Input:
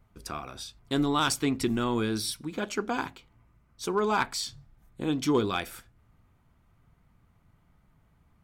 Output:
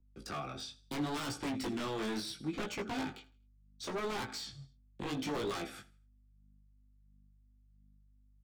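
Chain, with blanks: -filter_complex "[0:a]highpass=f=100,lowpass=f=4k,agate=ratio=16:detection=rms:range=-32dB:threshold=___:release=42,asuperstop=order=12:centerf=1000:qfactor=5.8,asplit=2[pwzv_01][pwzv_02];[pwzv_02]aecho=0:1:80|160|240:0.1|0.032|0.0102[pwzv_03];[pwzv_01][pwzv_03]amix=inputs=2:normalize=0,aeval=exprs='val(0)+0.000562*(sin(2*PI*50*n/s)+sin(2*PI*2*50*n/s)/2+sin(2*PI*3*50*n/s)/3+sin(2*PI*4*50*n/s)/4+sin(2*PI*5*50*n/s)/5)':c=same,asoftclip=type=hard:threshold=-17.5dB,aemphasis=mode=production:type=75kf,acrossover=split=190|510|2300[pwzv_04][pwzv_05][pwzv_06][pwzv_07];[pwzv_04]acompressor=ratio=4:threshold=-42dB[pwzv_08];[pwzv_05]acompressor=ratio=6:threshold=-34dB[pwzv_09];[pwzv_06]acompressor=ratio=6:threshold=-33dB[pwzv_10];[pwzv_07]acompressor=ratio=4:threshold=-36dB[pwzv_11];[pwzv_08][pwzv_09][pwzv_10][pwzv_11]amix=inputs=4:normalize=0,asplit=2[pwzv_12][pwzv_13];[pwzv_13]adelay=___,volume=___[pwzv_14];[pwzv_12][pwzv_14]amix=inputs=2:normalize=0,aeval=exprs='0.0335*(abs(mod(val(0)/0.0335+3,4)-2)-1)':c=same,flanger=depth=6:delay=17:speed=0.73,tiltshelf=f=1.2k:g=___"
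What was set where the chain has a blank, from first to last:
-56dB, 15, -11dB, 3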